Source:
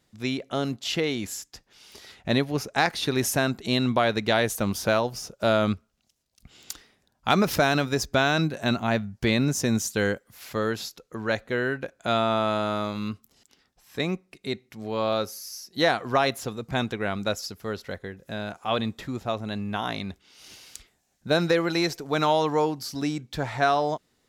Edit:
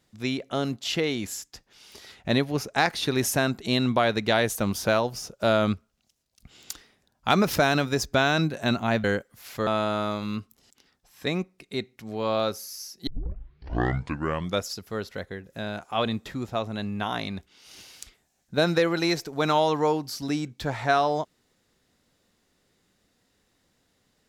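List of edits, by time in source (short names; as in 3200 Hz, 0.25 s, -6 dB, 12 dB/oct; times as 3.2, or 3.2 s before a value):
9.04–10 cut
10.63–12.4 cut
15.8 tape start 1.58 s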